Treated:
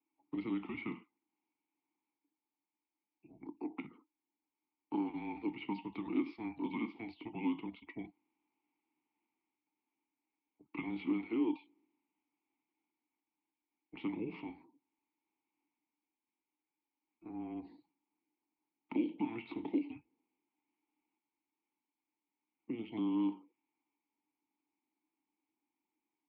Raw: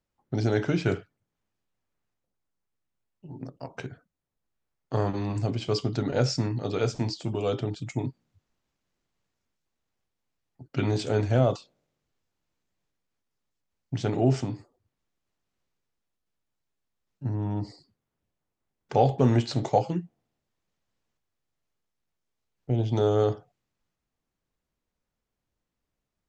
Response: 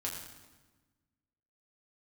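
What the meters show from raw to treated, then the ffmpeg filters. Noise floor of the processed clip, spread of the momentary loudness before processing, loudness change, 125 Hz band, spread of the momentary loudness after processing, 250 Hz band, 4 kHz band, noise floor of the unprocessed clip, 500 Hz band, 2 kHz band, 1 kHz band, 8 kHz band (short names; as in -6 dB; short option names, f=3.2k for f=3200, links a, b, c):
under -85 dBFS, 16 LU, -12.5 dB, -27.0 dB, 14 LU, -6.5 dB, -18.5 dB, -85 dBFS, -19.5 dB, -9.5 dB, -16.0 dB, under -30 dB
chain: -filter_complex "[0:a]highpass=f=440:t=q:w=0.5412,highpass=f=440:t=q:w=1.307,lowpass=f=3.6k:t=q:w=0.5176,lowpass=f=3.6k:t=q:w=0.7071,lowpass=f=3.6k:t=q:w=1.932,afreqshift=-230,acrossover=split=430|2300[a][b][c];[a]acompressor=threshold=-40dB:ratio=4[d];[b]acompressor=threshold=-44dB:ratio=4[e];[c]acompressor=threshold=-49dB:ratio=4[f];[d][e][f]amix=inputs=3:normalize=0,asplit=3[g][h][i];[g]bandpass=f=300:t=q:w=8,volume=0dB[j];[h]bandpass=f=870:t=q:w=8,volume=-6dB[k];[i]bandpass=f=2.24k:t=q:w=8,volume=-9dB[l];[j][k][l]amix=inputs=3:normalize=0,volume=12dB"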